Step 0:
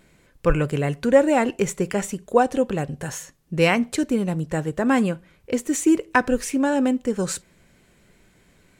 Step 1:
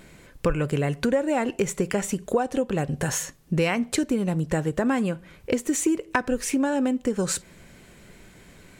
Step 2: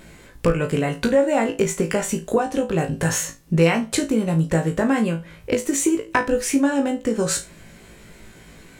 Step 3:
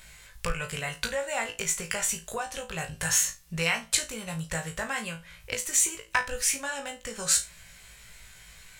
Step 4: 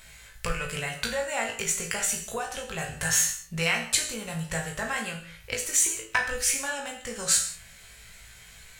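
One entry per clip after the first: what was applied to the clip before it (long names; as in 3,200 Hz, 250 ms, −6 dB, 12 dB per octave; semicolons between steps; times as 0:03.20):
downward compressor 5 to 1, threshold −29 dBFS, peak gain reduction 17.5 dB; level +7.5 dB
flutter between parallel walls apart 3.1 metres, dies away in 0.23 s; level +2.5 dB
guitar amp tone stack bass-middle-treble 10-0-10; level +2 dB
reverb whose tail is shaped and stops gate 210 ms falling, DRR 3.5 dB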